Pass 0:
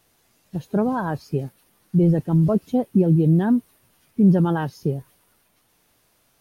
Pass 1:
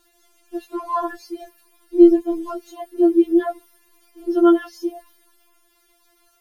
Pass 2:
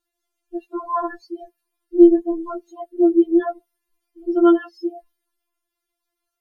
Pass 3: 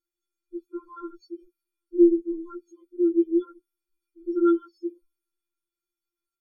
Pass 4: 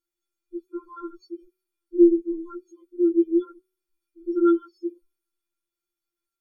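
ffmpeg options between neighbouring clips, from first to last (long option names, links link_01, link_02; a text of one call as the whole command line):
ffmpeg -i in.wav -af "afftfilt=real='re*4*eq(mod(b,16),0)':imag='im*4*eq(mod(b,16),0)':win_size=2048:overlap=0.75,volume=5dB" out.wav
ffmpeg -i in.wav -af "afftdn=noise_reduction=21:noise_floor=-33" out.wav
ffmpeg -i in.wav -af "afftfilt=real='re*eq(mod(floor(b*sr/1024/520),2),0)':imag='im*eq(mod(floor(b*sr/1024/520),2),0)':win_size=1024:overlap=0.75,volume=-6.5dB" out.wav
ffmpeg -i in.wav -af "bandreject=frequency=184.7:width_type=h:width=4,bandreject=frequency=369.4:width_type=h:width=4,bandreject=frequency=554.1:width_type=h:width=4,bandreject=frequency=738.8:width_type=h:width=4,bandreject=frequency=923.5:width_type=h:width=4,bandreject=frequency=1108.2:width_type=h:width=4,bandreject=frequency=1292.9:width_type=h:width=4,bandreject=frequency=1477.6:width_type=h:width=4,bandreject=frequency=1662.3:width_type=h:width=4,bandreject=frequency=1847:width_type=h:width=4,bandreject=frequency=2031.7:width_type=h:width=4,bandreject=frequency=2216.4:width_type=h:width=4,bandreject=frequency=2401.1:width_type=h:width=4,bandreject=frequency=2585.8:width_type=h:width=4,bandreject=frequency=2770.5:width_type=h:width=4,bandreject=frequency=2955.2:width_type=h:width=4,bandreject=frequency=3139.9:width_type=h:width=4,bandreject=frequency=3324.6:width_type=h:width=4,bandreject=frequency=3509.3:width_type=h:width=4,bandreject=frequency=3694:width_type=h:width=4,bandreject=frequency=3878.7:width_type=h:width=4,bandreject=frequency=4063.4:width_type=h:width=4,bandreject=frequency=4248.1:width_type=h:width=4,bandreject=frequency=4432.8:width_type=h:width=4,bandreject=frequency=4617.5:width_type=h:width=4,bandreject=frequency=4802.2:width_type=h:width=4,volume=1.5dB" out.wav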